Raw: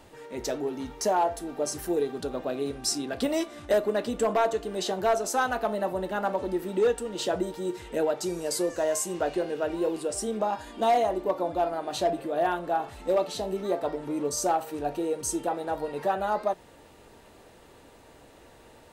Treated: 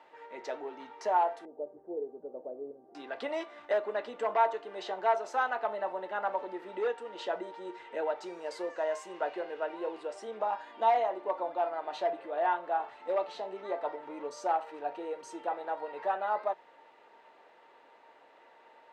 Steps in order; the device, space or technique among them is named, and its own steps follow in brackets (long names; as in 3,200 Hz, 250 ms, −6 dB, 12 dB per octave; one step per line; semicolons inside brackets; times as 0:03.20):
0:01.45–0:02.95: Chebyshev low-pass filter 540 Hz, order 3
tin-can telephone (band-pass filter 600–2,500 Hz; hollow resonant body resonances 910/2,000 Hz, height 9 dB, ringing for 85 ms)
level −2.5 dB